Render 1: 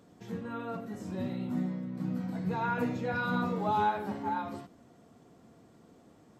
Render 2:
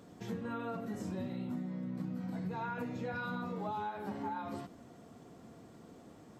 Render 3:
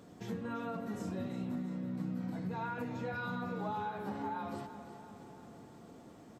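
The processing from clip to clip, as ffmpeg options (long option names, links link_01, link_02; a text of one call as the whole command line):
ffmpeg -i in.wav -af "acompressor=threshold=-39dB:ratio=12,volume=3.5dB" out.wav
ffmpeg -i in.wav -af "aecho=1:1:339|678|1017|1356|1695|2034|2373:0.251|0.148|0.0874|0.0516|0.0304|0.018|0.0106" out.wav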